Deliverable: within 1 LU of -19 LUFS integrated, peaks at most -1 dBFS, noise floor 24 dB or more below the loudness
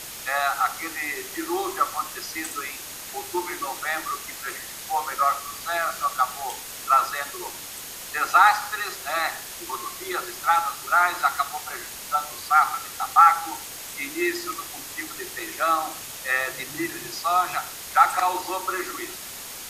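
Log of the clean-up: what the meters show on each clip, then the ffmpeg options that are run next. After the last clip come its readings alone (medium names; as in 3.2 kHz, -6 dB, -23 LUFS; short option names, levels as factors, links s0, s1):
steady tone 6.6 kHz; tone level -49 dBFS; noise floor -38 dBFS; noise floor target -49 dBFS; loudness -25.0 LUFS; peak level -3.5 dBFS; loudness target -19.0 LUFS
-> -af "bandreject=f=6600:w=30"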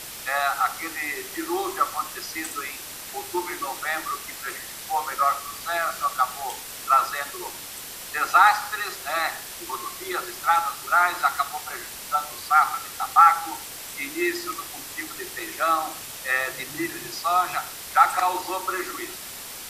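steady tone not found; noise floor -38 dBFS; noise floor target -49 dBFS
-> -af "afftdn=nr=11:nf=-38"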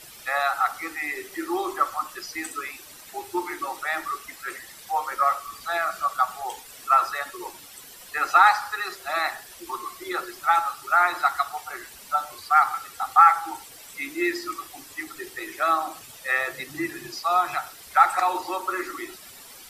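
noise floor -46 dBFS; noise floor target -49 dBFS
-> -af "afftdn=nr=6:nf=-46"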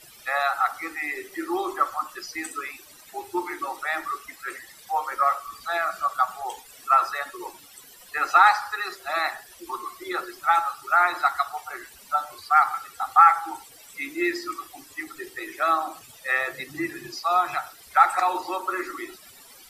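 noise floor -49 dBFS; loudness -24.5 LUFS; peak level -3.5 dBFS; loudness target -19.0 LUFS
-> -af "volume=1.88,alimiter=limit=0.891:level=0:latency=1"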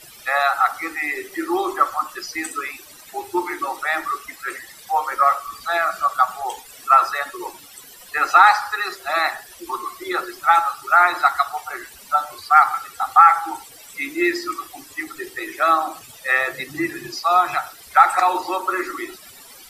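loudness -19.5 LUFS; peak level -1.0 dBFS; noise floor -44 dBFS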